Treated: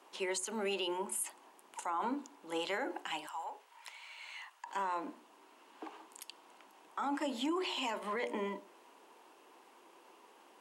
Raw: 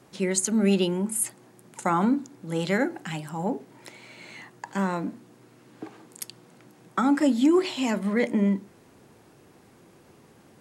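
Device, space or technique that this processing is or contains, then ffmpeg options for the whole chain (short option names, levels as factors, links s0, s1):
laptop speaker: -filter_complex "[0:a]highpass=f=320:w=0.5412,highpass=f=320:w=1.3066,equalizer=f=970:t=o:w=0.56:g=11,equalizer=f=2900:t=o:w=0.47:g=8,bandreject=f=60:t=h:w=6,bandreject=f=120:t=h:w=6,bandreject=f=180:t=h:w=6,bandreject=f=240:t=h:w=6,bandreject=f=300:t=h:w=6,bandreject=f=360:t=h:w=6,bandreject=f=420:t=h:w=6,bandreject=f=480:t=h:w=6,bandreject=f=540:t=h:w=6,bandreject=f=600:t=h:w=6,alimiter=limit=0.0891:level=0:latency=1:release=74,asettb=1/sr,asplit=3[s0][s1][s2];[s0]atrim=end=3.274[s3];[s1]atrim=start=3.27:end=4.66,asetpts=PTS-STARTPTS,afade=t=in:d=0.004:c=qsin,afade=t=out:st=1.386:d=0.004:c=qsin,highpass=1100[s4];[s2]atrim=start=4.656[s5];[s3][s4]acrossfade=d=0.004:c1=hsin:c2=qsin[s6];[s6][s5]acrossfade=d=0.004:c1=qsin:c2=hsin,volume=0.473"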